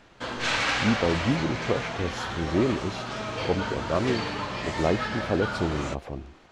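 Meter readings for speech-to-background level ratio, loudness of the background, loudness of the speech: 1.0 dB, −30.0 LKFS, −29.0 LKFS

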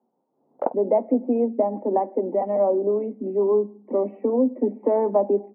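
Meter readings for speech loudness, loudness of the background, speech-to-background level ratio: −23.0 LKFS, −30.0 LKFS, 7.0 dB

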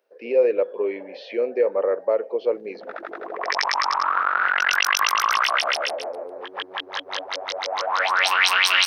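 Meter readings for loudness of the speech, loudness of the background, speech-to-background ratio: −23.5 LKFS, −21.0 LKFS, −2.5 dB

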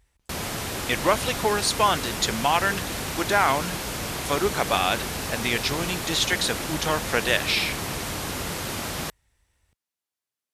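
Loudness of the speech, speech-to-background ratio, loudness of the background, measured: −24.5 LKFS, 5.0 dB, −29.5 LKFS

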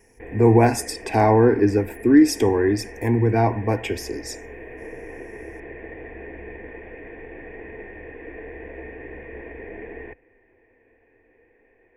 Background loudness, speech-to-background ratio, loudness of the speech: −38.5 LKFS, 19.5 dB, −19.0 LKFS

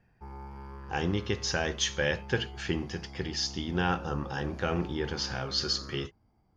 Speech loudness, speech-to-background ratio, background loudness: −31.5 LKFS, 13.5 dB, −45.0 LKFS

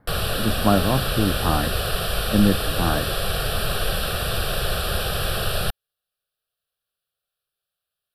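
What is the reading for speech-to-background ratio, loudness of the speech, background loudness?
1.0 dB, −23.5 LKFS, −24.5 LKFS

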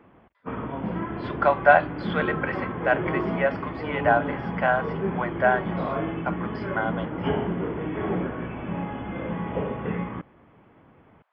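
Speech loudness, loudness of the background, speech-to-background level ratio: −25.0 LKFS, −30.0 LKFS, 5.0 dB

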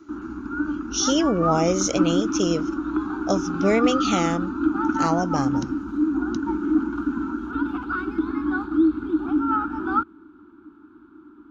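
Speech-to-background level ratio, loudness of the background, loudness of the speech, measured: 1.0 dB, −25.0 LKFS, −24.0 LKFS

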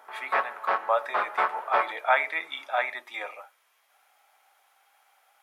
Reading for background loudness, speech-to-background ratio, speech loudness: −29.0 LKFS, −0.5 dB, −29.5 LKFS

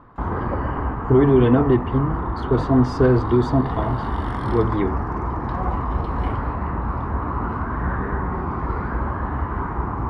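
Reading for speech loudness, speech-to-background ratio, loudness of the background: −19.5 LKFS, 6.5 dB, −26.0 LKFS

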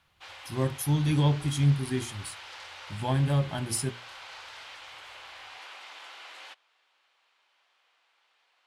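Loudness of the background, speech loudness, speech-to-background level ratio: −44.0 LKFS, −28.0 LKFS, 16.0 dB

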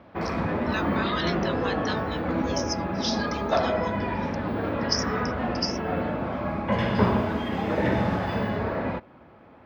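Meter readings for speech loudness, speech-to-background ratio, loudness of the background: −33.5 LKFS, −6.5 dB, −27.0 LKFS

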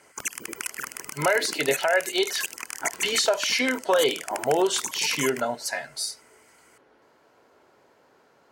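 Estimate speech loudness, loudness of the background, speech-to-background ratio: −25.0 LKFS, −33.0 LKFS, 8.0 dB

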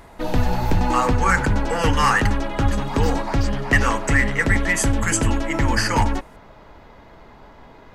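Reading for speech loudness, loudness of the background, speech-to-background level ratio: −22.5 LKFS, −23.5 LKFS, 1.0 dB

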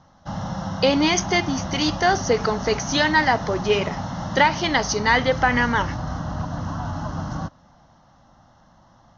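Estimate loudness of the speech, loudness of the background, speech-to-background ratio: −21.0 LKFS, −30.0 LKFS, 9.0 dB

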